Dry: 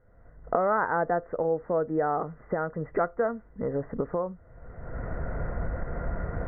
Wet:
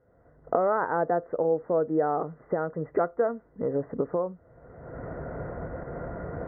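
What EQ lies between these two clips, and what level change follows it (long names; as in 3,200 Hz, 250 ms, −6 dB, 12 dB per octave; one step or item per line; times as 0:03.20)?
resonant band-pass 250 Hz, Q 0.59
spectral tilt +2 dB per octave
parametric band 210 Hz −6.5 dB 0.27 octaves
+6.5 dB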